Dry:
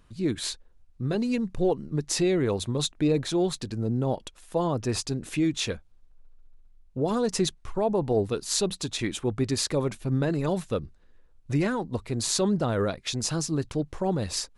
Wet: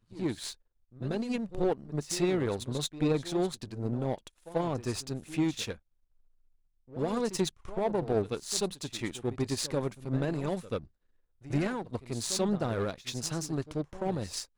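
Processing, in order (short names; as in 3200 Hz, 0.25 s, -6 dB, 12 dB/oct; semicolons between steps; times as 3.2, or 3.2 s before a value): pre-echo 87 ms -12 dB; power-law curve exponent 1.4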